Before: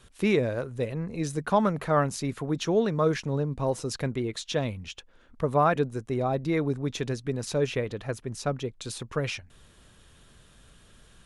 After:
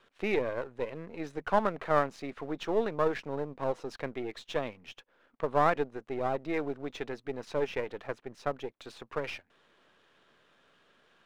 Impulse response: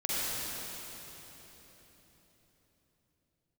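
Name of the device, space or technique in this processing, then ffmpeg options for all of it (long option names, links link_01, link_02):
crystal radio: -af "highpass=360,lowpass=2700,aeval=exprs='if(lt(val(0),0),0.447*val(0),val(0))':channel_layout=same"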